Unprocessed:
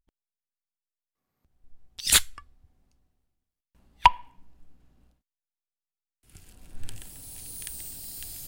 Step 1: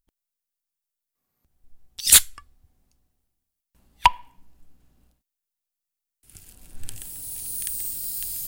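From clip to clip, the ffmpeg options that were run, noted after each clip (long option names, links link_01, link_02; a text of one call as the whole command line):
ffmpeg -i in.wav -af "crystalizer=i=1.5:c=0" out.wav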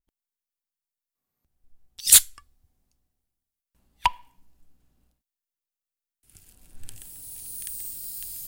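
ffmpeg -i in.wav -af "adynamicequalizer=threshold=0.02:dfrequency=3300:dqfactor=0.7:tfrequency=3300:tqfactor=0.7:attack=5:release=100:ratio=0.375:range=3:mode=boostabove:tftype=highshelf,volume=-6dB" out.wav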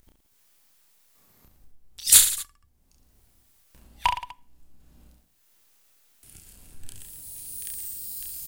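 ffmpeg -i in.wav -filter_complex "[0:a]acompressor=mode=upward:threshold=-40dB:ratio=2.5,asplit=2[link_01][link_02];[link_02]aecho=0:1:30|67.5|114.4|173|246.2:0.631|0.398|0.251|0.158|0.1[link_03];[link_01][link_03]amix=inputs=2:normalize=0,volume=-2dB" out.wav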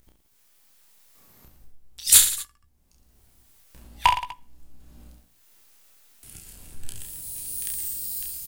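ffmpeg -i in.wav -filter_complex "[0:a]dynaudnorm=framelen=510:gausssize=3:maxgain=4.5dB,asplit=2[link_01][link_02];[link_02]adelay=17,volume=-10dB[link_03];[link_01][link_03]amix=inputs=2:normalize=0" out.wav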